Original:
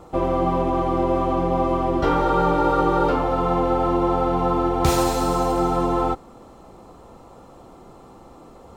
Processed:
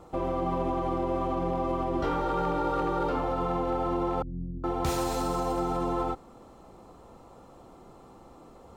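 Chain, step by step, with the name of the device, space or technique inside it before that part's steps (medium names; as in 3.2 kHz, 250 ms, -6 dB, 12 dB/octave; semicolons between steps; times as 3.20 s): clipper into limiter (hard clipper -11 dBFS, distortion -27 dB; peak limiter -14.5 dBFS, peak gain reduction 3.5 dB); 4.22–4.64 s: inverse Chebyshev low-pass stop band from 1.3 kHz, stop band 80 dB; trim -6 dB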